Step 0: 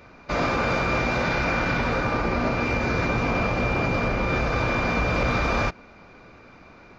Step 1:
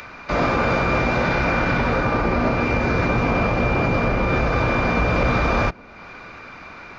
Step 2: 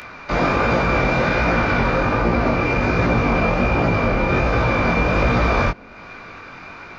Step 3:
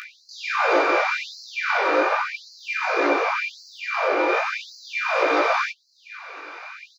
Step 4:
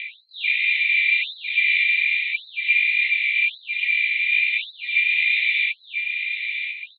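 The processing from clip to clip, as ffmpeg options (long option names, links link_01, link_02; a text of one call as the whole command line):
ffmpeg -i in.wav -filter_complex "[0:a]highshelf=frequency=3700:gain=-7.5,acrossover=split=130|970[link_01][link_02][link_03];[link_03]acompressor=mode=upward:threshold=-34dB:ratio=2.5[link_04];[link_01][link_02][link_04]amix=inputs=3:normalize=0,volume=4.5dB" out.wav
ffmpeg -i in.wav -af "flanger=delay=17:depth=6.2:speed=1.3,volume=4.5dB" out.wav
ffmpeg -i in.wav -filter_complex "[0:a]asplit=2[link_01][link_02];[link_02]adelay=17,volume=-10dB[link_03];[link_01][link_03]amix=inputs=2:normalize=0,afftfilt=real='re*gte(b*sr/1024,260*pow(4100/260,0.5+0.5*sin(2*PI*0.89*pts/sr)))':imag='im*gte(b*sr/1024,260*pow(4100/260,0.5+0.5*sin(2*PI*0.89*pts/sr)))':win_size=1024:overlap=0.75" out.wav
ffmpeg -i in.wav -af "asuperpass=centerf=2800:order=20:qfactor=1.4,aecho=1:1:1003:0.447,volume=8.5dB" out.wav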